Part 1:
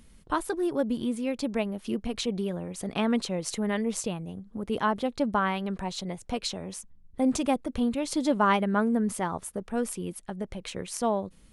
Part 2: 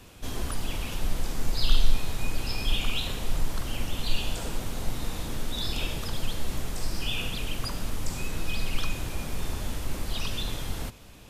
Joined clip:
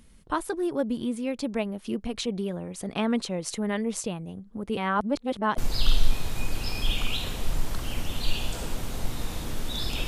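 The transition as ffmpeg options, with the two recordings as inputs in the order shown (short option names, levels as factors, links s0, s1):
-filter_complex "[0:a]apad=whole_dur=10.07,atrim=end=10.07,asplit=2[s0][s1];[s0]atrim=end=4.772[s2];[s1]atrim=start=4.768:end=5.582,asetpts=PTS-STARTPTS,areverse[s3];[1:a]atrim=start=1.408:end=5.9[s4];[s2][s3]acrossfade=d=0.004:c1=hsin:c2=hsin[s5];[s5][s4]acrossfade=d=0.004:c1=hsin:c2=hsin"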